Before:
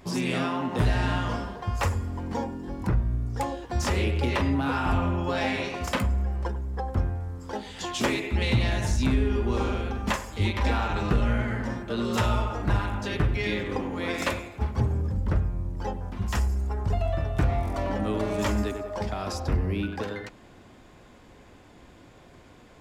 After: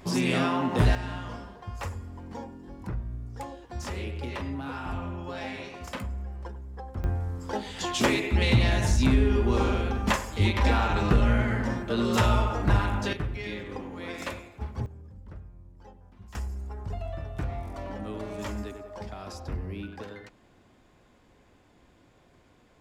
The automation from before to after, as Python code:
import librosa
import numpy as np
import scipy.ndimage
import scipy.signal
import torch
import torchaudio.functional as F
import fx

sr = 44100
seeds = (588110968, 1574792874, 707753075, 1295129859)

y = fx.gain(x, sr, db=fx.steps((0.0, 2.0), (0.95, -9.0), (7.04, 2.0), (13.13, -7.5), (14.86, -19.0), (16.35, -8.5)))